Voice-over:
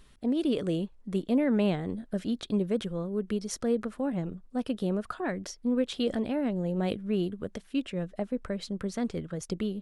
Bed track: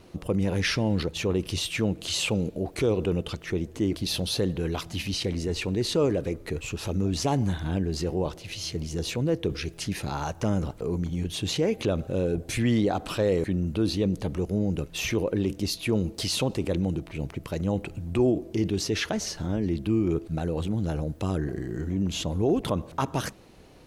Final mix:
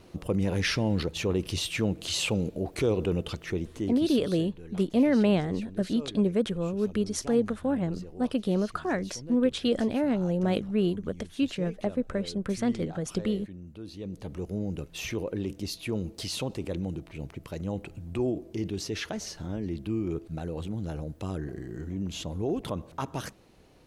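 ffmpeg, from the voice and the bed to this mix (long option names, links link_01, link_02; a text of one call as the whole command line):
ffmpeg -i stem1.wav -i stem2.wav -filter_complex "[0:a]adelay=3650,volume=3dB[link_01];[1:a]volume=9.5dB,afade=type=out:start_time=3.45:duration=0.83:silence=0.16788,afade=type=in:start_time=13.91:duration=0.57:silence=0.281838[link_02];[link_01][link_02]amix=inputs=2:normalize=0" out.wav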